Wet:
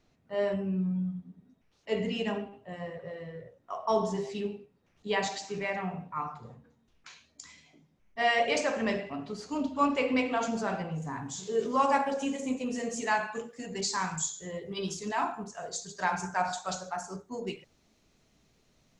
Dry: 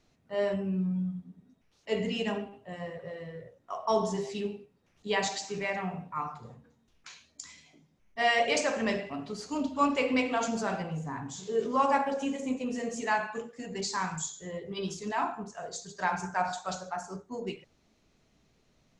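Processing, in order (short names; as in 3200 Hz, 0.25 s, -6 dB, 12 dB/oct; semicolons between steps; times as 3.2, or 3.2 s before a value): high shelf 5000 Hz -6 dB, from 11.02 s +5.5 dB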